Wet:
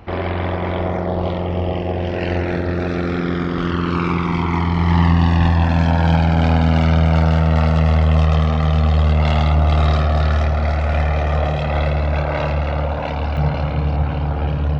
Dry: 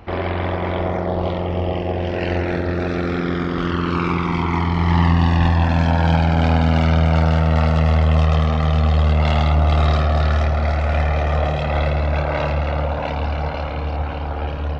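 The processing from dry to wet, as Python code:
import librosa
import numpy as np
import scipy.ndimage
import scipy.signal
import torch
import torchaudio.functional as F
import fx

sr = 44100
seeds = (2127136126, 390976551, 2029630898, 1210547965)

y = fx.peak_eq(x, sr, hz=140.0, db=fx.steps((0.0, 2.5), (13.37, 12.5)), octaves=1.3)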